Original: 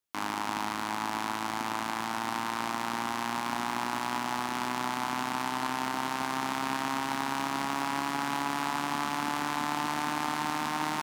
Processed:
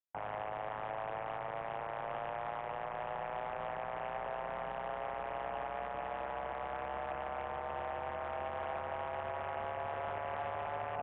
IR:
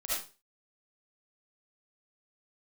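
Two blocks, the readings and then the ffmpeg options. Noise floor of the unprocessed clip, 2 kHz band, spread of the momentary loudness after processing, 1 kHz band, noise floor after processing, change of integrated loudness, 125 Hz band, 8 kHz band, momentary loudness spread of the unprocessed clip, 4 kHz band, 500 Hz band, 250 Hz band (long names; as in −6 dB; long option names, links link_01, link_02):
−35 dBFS, −11.0 dB, 1 LU, −8.0 dB, −42 dBFS, −8.5 dB, −7.0 dB, below −40 dB, 2 LU, −19.5 dB, +2.0 dB, −20.0 dB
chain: -af "afwtdn=0.0141,alimiter=limit=-20dB:level=0:latency=1:release=190,aresample=8000,asoftclip=type=hard:threshold=-30dB,aresample=44100,highpass=frequency=380:width_type=q:width=0.5412,highpass=frequency=380:width_type=q:width=1.307,lowpass=frequency=2900:width_type=q:width=0.5176,lowpass=frequency=2900:width_type=q:width=0.7071,lowpass=frequency=2900:width_type=q:width=1.932,afreqshift=-200,volume=-1.5dB"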